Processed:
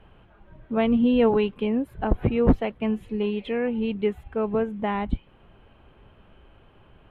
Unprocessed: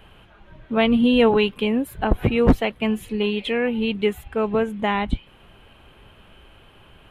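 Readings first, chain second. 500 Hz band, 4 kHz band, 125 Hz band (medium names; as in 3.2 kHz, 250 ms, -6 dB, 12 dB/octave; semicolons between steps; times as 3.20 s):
-3.0 dB, -12.0 dB, -2.5 dB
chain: low-pass 1.1 kHz 6 dB/octave; trim -2.5 dB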